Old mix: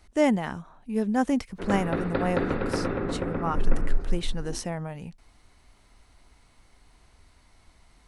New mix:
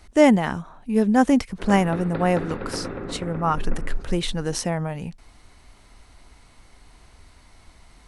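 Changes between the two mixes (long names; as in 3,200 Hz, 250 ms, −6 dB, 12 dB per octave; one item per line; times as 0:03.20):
speech +7.0 dB
background −3.5 dB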